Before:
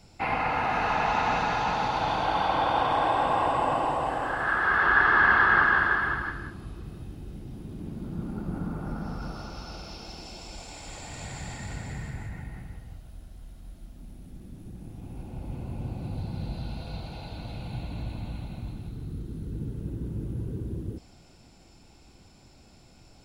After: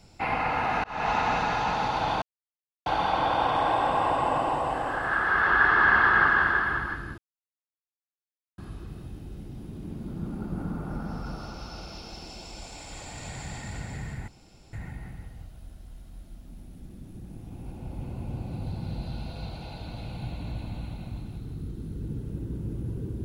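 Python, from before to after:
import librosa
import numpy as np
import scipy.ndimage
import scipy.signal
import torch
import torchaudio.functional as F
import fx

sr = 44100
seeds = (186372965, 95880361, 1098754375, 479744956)

y = fx.edit(x, sr, fx.fade_in_span(start_s=0.84, length_s=0.25),
    fx.insert_silence(at_s=2.22, length_s=0.64),
    fx.insert_silence(at_s=6.54, length_s=1.4),
    fx.insert_room_tone(at_s=12.24, length_s=0.45), tone=tone)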